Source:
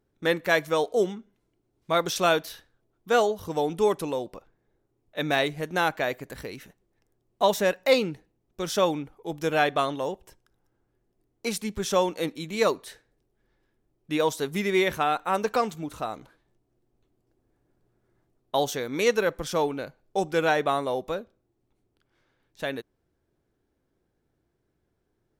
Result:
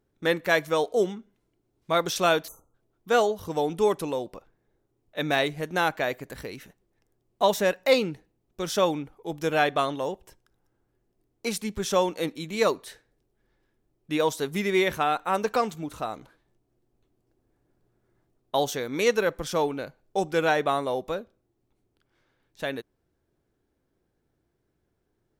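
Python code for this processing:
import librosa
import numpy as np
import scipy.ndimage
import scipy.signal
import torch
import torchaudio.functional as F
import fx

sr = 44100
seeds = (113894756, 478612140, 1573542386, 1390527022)

y = fx.spec_erase(x, sr, start_s=2.48, length_s=0.26, low_hz=1400.0, high_hz=6000.0)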